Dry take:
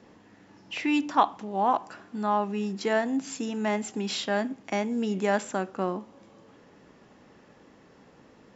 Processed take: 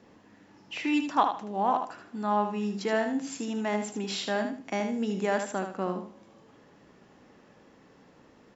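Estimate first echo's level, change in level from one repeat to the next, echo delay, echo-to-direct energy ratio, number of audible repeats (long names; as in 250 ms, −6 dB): −7.0 dB, −11.5 dB, 77 ms, −6.5 dB, 3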